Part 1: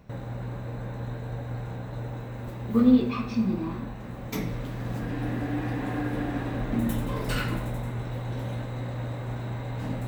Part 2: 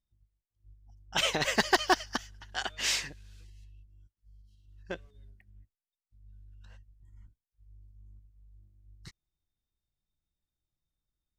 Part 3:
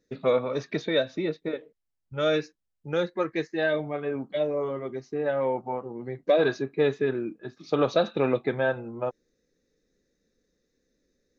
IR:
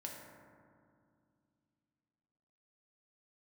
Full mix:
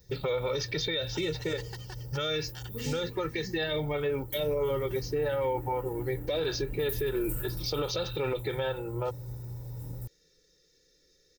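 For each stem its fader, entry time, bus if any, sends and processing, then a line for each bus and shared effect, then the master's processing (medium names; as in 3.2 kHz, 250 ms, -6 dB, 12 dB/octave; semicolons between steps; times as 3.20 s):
-8.0 dB, 0.00 s, no send, FFT filter 170 Hz 0 dB, 4.5 kHz -30 dB, 7.7 kHz -7 dB, 14 kHz +8 dB
-14.0 dB, 0.00 s, no send, compression 6:1, threshold -35 dBFS, peak gain reduction 15.5 dB
0.0 dB, 0.00 s, no send, graphic EQ with 31 bands 160 Hz +10 dB, 3.15 kHz +6 dB, 5 kHz +8 dB; compression 4:1, threshold -26 dBFS, peak gain reduction 8.5 dB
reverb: none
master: treble shelf 2.2 kHz +10.5 dB; comb 2.2 ms, depth 81%; peak limiter -22 dBFS, peak gain reduction 11.5 dB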